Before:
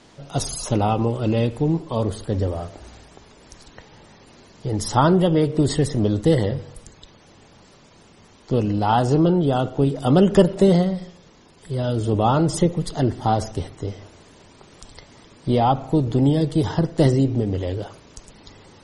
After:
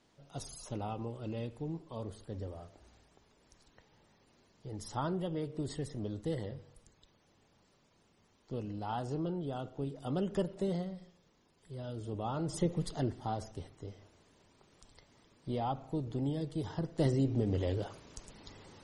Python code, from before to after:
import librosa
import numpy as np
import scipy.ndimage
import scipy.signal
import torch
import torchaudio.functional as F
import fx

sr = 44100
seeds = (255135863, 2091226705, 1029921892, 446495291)

y = fx.gain(x, sr, db=fx.line((12.31, -19.0), (12.81, -10.0), (13.29, -17.0), (16.71, -17.0), (17.6, -7.5)))